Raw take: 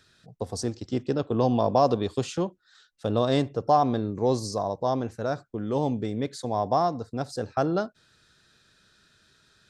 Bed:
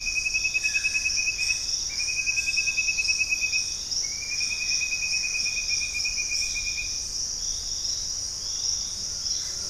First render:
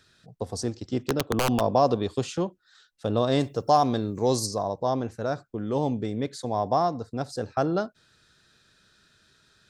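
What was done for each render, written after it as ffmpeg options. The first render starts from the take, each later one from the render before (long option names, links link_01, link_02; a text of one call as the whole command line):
ffmpeg -i in.wav -filter_complex "[0:a]asplit=3[link_01][link_02][link_03];[link_01]afade=type=out:start_time=0.98:duration=0.02[link_04];[link_02]aeval=exprs='(mod(5.96*val(0)+1,2)-1)/5.96':channel_layout=same,afade=type=in:start_time=0.98:duration=0.02,afade=type=out:start_time=1.59:duration=0.02[link_05];[link_03]afade=type=in:start_time=1.59:duration=0.02[link_06];[link_04][link_05][link_06]amix=inputs=3:normalize=0,asplit=3[link_07][link_08][link_09];[link_07]afade=type=out:start_time=3.4:duration=0.02[link_10];[link_08]aemphasis=mode=production:type=75kf,afade=type=in:start_time=3.4:duration=0.02,afade=type=out:start_time=4.45:duration=0.02[link_11];[link_09]afade=type=in:start_time=4.45:duration=0.02[link_12];[link_10][link_11][link_12]amix=inputs=3:normalize=0" out.wav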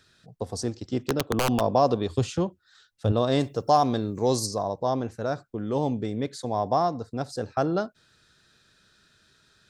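ffmpeg -i in.wav -filter_complex "[0:a]asettb=1/sr,asplit=3[link_01][link_02][link_03];[link_01]atrim=end=2.094[link_04];[link_02]atrim=start=2.09:end=3.12,asetpts=PTS-STARTPTS,afade=type=in:duration=0.004:curve=qsin,afade=type=out:start_time=1.026:duration=0.004:curve=qsin,equalizer=frequency=87:width=1.5:gain=15[link_05];[link_03]atrim=start=3.116[link_06];[link_04][link_05]acrossfade=duration=0.004:curve1=hsin:curve2=qsin[link_07];[link_07][link_06]acrossfade=duration=0.004:curve1=qsin:curve2=hsin" out.wav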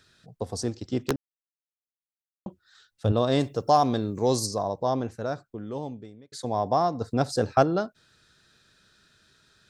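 ffmpeg -i in.wav -filter_complex "[0:a]asplit=3[link_01][link_02][link_03];[link_01]afade=type=out:start_time=7:duration=0.02[link_04];[link_02]acontrast=60,afade=type=in:start_time=7:duration=0.02,afade=type=out:start_time=7.62:duration=0.02[link_05];[link_03]afade=type=in:start_time=7.62:duration=0.02[link_06];[link_04][link_05][link_06]amix=inputs=3:normalize=0,asplit=4[link_07][link_08][link_09][link_10];[link_07]atrim=end=1.16,asetpts=PTS-STARTPTS,afade=type=out:start_time=1.156:duration=0.004:curve=hsin[link_11];[link_08]atrim=start=1.16:end=2.46,asetpts=PTS-STARTPTS,volume=0[link_12];[link_09]atrim=start=2.46:end=6.32,asetpts=PTS-STARTPTS,afade=type=in:duration=0.004:curve=hsin,afade=type=out:start_time=2.56:duration=1.3[link_13];[link_10]atrim=start=6.32,asetpts=PTS-STARTPTS,afade=type=in:duration=0.004:curve=hsin[link_14];[link_11][link_12][link_13][link_14]concat=n=4:v=0:a=1" out.wav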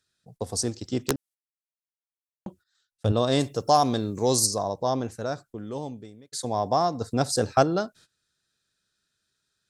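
ffmpeg -i in.wav -af "agate=range=-19dB:threshold=-52dB:ratio=16:detection=peak,equalizer=frequency=9900:width_type=o:width=1.7:gain=11" out.wav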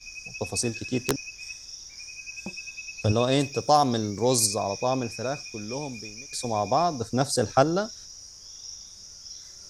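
ffmpeg -i in.wav -i bed.wav -filter_complex "[1:a]volume=-14dB[link_01];[0:a][link_01]amix=inputs=2:normalize=0" out.wav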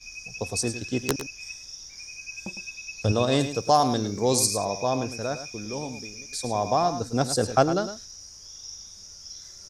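ffmpeg -i in.wav -af "aecho=1:1:106:0.282" out.wav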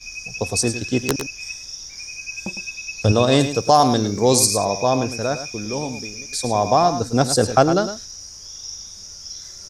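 ffmpeg -i in.wav -af "volume=7dB,alimiter=limit=-2dB:level=0:latency=1" out.wav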